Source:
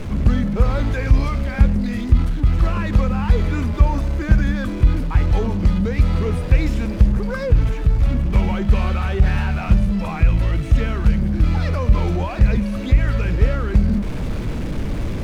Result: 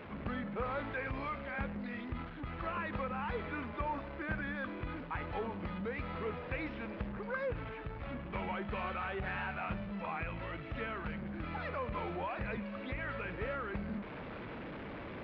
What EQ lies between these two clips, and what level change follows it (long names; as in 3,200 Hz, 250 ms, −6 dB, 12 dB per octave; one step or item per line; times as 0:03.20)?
Gaussian smoothing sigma 3.3 samples
high-pass filter 1,200 Hz 6 dB per octave
−4.0 dB